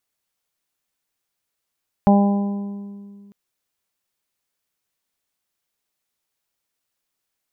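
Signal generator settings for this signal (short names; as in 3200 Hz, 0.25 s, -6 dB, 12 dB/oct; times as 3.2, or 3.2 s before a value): additive tone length 1.25 s, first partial 201 Hz, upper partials -13/-8/-6/-18 dB, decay 2.20 s, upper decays 2.00/1.21/1.13/1.51 s, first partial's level -10 dB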